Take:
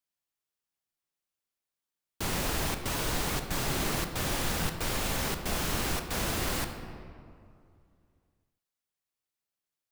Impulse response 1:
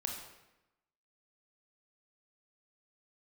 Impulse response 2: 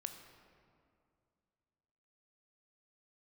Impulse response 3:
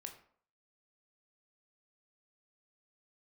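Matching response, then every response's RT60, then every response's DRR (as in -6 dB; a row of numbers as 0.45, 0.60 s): 2; 0.95, 2.3, 0.55 s; 1.0, 6.0, 4.0 dB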